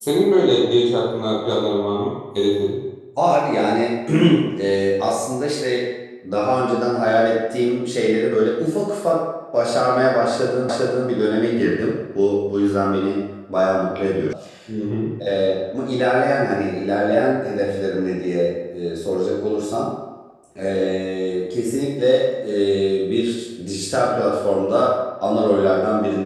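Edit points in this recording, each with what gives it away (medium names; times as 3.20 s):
10.69 s: repeat of the last 0.4 s
14.33 s: sound stops dead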